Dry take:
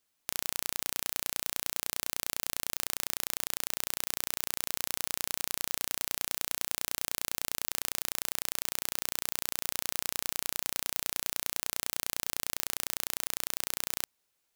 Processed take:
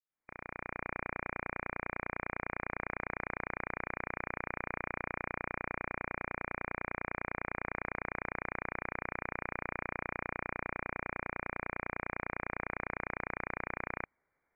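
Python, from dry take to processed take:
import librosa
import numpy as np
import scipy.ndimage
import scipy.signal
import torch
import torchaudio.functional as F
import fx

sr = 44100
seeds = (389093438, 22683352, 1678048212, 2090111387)

y = fx.fade_in_head(x, sr, length_s=0.94)
y = fx.brickwall_lowpass(y, sr, high_hz=2400.0)
y = y * 10.0 ** (5.0 / 20.0)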